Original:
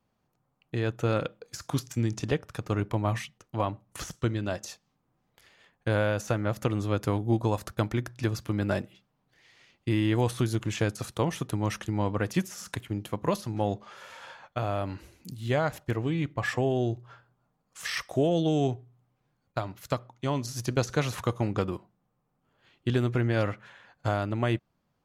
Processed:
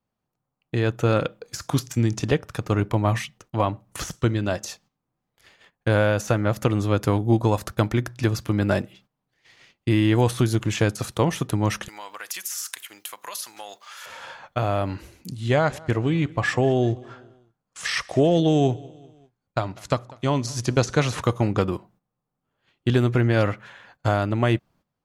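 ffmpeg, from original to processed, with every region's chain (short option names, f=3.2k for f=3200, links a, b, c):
-filter_complex "[0:a]asettb=1/sr,asplit=3[a][b][c];[a]atrim=end=11.884[d];[b]atrim=start=11.88:end=14.06,asetpts=PTS-STARTPTS,afade=t=in:d=0.004:c=qsin,afade=t=out:st=2.176:d=0.004:c=qsin,highpass=1.2k,acompressor=threshold=-42dB:ratio=2.5:attack=3.2:release=140:knee=1:detection=peak,aemphasis=mode=production:type=50kf[e];[c]atrim=start=14.056[f];[d][e]acrossfade=d=0.004:c1=hsin:c2=qsin[g];[g][f]acrossfade=d=0.004:c1=qsin:c2=hsin,asettb=1/sr,asplit=3[h][i][j];[h]atrim=end=15.294[k];[i]atrim=start=15.29:end=21.22,asetpts=PTS-STARTPTS,afade=t=in:d=0.004:c=qsin,afade=t=out:st=5.926:d=0.004:c=qsin,lowpass=f=10k:w=0.5412,lowpass=f=10k:w=1.3066,aecho=1:1:196|392|588:0.0668|0.0341|0.0174,atrim=end_sample=261513[l];[j]atrim=start=21.216[m];[k][l]acrossfade=d=0.004:c1=hsin:c2=qsin[n];[n][m]acrossfade=d=0.004:c1=qsin:c2=hsin,acontrast=65,agate=range=-13dB:threshold=-53dB:ratio=16:detection=peak"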